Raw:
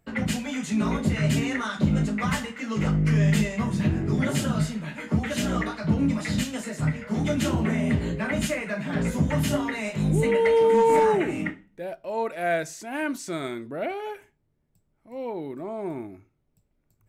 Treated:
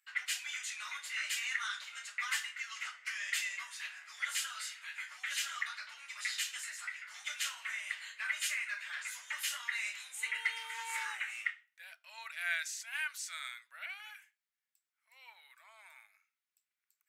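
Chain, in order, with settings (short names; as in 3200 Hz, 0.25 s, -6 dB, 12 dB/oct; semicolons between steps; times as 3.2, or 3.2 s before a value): 11.44–13.05 dynamic EQ 3500 Hz, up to +4 dB, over -46 dBFS, Q 1; inverse Chebyshev high-pass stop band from 340 Hz, stop band 70 dB; gain -2.5 dB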